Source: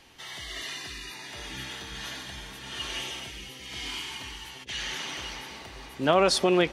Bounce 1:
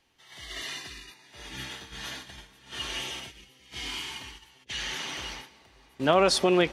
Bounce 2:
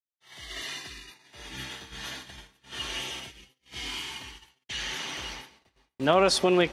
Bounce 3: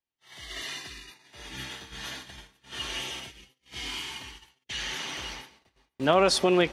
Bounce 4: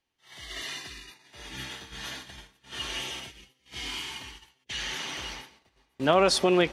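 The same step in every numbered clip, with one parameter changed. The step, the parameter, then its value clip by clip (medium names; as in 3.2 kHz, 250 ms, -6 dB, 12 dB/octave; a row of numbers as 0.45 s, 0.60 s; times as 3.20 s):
gate, range: -14 dB, -55 dB, -40 dB, -27 dB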